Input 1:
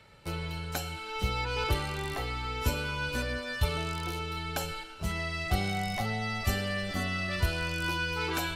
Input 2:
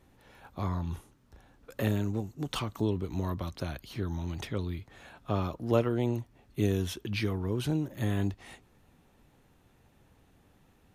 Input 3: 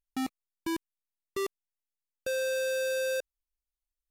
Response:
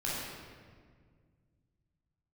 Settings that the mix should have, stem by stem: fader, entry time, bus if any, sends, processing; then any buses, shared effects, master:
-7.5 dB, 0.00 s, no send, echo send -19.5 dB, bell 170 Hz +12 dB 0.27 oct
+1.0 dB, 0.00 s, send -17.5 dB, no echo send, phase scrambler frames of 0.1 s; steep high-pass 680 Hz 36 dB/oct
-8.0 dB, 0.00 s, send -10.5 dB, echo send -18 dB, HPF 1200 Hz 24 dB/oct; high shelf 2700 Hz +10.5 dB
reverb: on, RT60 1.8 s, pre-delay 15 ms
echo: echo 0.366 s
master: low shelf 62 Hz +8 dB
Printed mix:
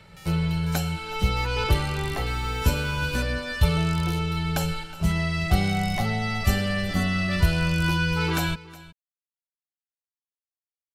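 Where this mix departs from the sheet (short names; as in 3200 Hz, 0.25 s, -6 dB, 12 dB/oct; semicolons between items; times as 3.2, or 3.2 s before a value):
stem 1 -7.5 dB -> +4.5 dB; stem 2: muted; stem 3: missing high shelf 2700 Hz +10.5 dB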